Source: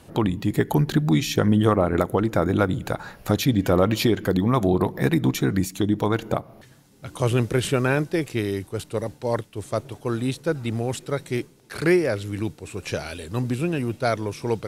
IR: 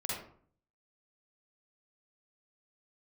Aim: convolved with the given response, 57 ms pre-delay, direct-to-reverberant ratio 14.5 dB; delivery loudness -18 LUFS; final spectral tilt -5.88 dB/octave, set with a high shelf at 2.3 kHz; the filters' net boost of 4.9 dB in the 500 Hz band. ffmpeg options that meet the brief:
-filter_complex "[0:a]equalizer=f=500:t=o:g=6,highshelf=f=2300:g=3.5,asplit=2[s0][s1];[1:a]atrim=start_sample=2205,adelay=57[s2];[s1][s2]afir=irnorm=-1:irlink=0,volume=0.126[s3];[s0][s3]amix=inputs=2:normalize=0,volume=1.41"

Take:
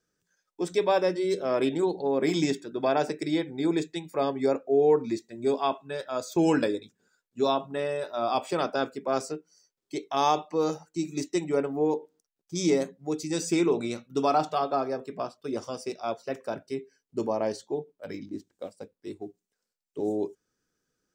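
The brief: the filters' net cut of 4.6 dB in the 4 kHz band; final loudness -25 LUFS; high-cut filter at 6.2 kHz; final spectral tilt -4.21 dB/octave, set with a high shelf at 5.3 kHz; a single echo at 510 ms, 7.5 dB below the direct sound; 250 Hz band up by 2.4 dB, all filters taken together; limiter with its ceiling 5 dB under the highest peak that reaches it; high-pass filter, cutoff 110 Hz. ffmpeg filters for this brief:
-af "highpass=110,lowpass=6200,equalizer=f=250:t=o:g=3.5,equalizer=f=4000:t=o:g=-6.5,highshelf=f=5300:g=4,alimiter=limit=0.15:level=0:latency=1,aecho=1:1:510:0.422,volume=1.5"

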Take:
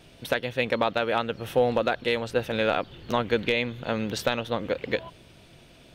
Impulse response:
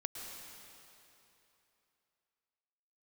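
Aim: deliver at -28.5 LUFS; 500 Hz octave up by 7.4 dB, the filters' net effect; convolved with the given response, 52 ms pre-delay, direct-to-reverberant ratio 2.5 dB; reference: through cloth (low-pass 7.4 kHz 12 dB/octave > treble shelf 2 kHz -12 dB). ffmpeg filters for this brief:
-filter_complex "[0:a]equalizer=f=500:t=o:g=9,asplit=2[s0][s1];[1:a]atrim=start_sample=2205,adelay=52[s2];[s1][s2]afir=irnorm=-1:irlink=0,volume=0.75[s3];[s0][s3]amix=inputs=2:normalize=0,lowpass=7400,highshelf=f=2000:g=-12,volume=0.398"

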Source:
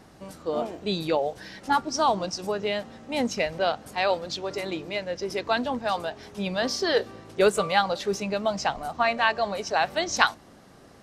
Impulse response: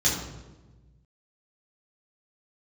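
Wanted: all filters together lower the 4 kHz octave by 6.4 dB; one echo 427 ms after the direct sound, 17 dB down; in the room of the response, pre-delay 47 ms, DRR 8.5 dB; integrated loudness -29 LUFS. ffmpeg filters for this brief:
-filter_complex "[0:a]equalizer=f=4000:t=o:g=-8.5,aecho=1:1:427:0.141,asplit=2[s0][s1];[1:a]atrim=start_sample=2205,adelay=47[s2];[s1][s2]afir=irnorm=-1:irlink=0,volume=0.0944[s3];[s0][s3]amix=inputs=2:normalize=0,volume=0.75"

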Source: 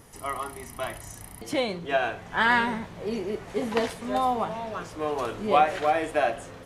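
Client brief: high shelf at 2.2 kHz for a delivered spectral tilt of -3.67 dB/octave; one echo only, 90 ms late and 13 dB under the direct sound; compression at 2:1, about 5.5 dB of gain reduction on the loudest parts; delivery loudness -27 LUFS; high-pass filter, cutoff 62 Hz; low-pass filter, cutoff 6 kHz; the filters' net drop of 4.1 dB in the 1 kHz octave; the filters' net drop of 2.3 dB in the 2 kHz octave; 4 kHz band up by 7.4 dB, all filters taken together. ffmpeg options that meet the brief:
-af "highpass=62,lowpass=6000,equalizer=f=1000:t=o:g=-6.5,equalizer=f=2000:t=o:g=-5,highshelf=f=2200:g=6,equalizer=f=4000:t=o:g=7,acompressor=threshold=0.0447:ratio=2,aecho=1:1:90:0.224,volume=1.68"

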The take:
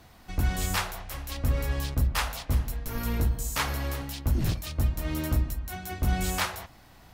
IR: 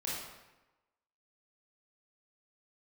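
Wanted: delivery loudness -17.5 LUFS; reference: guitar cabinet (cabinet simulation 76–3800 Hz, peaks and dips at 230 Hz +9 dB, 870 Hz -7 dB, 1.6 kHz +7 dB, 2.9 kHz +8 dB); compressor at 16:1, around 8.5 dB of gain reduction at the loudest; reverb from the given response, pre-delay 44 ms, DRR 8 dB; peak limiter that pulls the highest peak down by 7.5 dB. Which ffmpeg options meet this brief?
-filter_complex "[0:a]acompressor=threshold=0.0398:ratio=16,alimiter=level_in=1.33:limit=0.0631:level=0:latency=1,volume=0.75,asplit=2[s0][s1];[1:a]atrim=start_sample=2205,adelay=44[s2];[s1][s2]afir=irnorm=-1:irlink=0,volume=0.282[s3];[s0][s3]amix=inputs=2:normalize=0,highpass=76,equalizer=f=230:t=q:w=4:g=9,equalizer=f=870:t=q:w=4:g=-7,equalizer=f=1600:t=q:w=4:g=7,equalizer=f=2900:t=q:w=4:g=8,lowpass=f=3800:w=0.5412,lowpass=f=3800:w=1.3066,volume=8.91"

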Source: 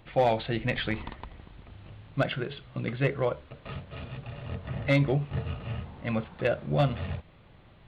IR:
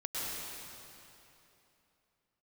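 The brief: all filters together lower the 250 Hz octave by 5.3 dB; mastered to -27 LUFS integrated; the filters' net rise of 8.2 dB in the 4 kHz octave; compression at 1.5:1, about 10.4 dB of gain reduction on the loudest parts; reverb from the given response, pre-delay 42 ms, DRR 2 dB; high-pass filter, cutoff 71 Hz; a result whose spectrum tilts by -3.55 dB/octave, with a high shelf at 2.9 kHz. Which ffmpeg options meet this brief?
-filter_complex "[0:a]highpass=71,equalizer=f=250:t=o:g=-8,highshelf=f=2900:g=5,equalizer=f=4000:t=o:g=7,acompressor=threshold=0.00316:ratio=1.5,asplit=2[s0][s1];[1:a]atrim=start_sample=2205,adelay=42[s2];[s1][s2]afir=irnorm=-1:irlink=0,volume=0.473[s3];[s0][s3]amix=inputs=2:normalize=0,volume=3.55"

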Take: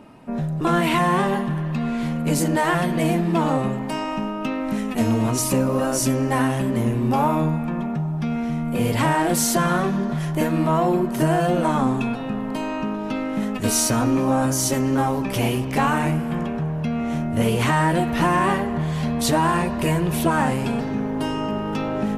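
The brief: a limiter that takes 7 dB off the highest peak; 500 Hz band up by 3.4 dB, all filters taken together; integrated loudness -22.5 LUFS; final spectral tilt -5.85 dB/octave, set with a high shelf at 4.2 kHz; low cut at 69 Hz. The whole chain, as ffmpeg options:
-af "highpass=69,equalizer=f=500:t=o:g=4.5,highshelf=f=4200:g=-3.5,volume=1.06,alimiter=limit=0.224:level=0:latency=1"

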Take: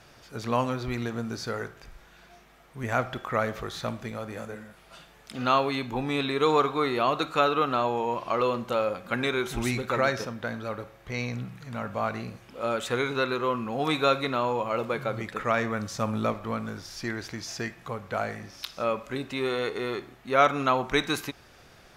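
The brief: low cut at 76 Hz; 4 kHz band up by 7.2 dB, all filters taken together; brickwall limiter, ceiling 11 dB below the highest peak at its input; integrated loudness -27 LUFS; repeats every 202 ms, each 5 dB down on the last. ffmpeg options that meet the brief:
-af "highpass=76,equalizer=f=4000:t=o:g=8,alimiter=limit=0.168:level=0:latency=1,aecho=1:1:202|404|606|808|1010|1212|1414:0.562|0.315|0.176|0.0988|0.0553|0.031|0.0173,volume=1.12"

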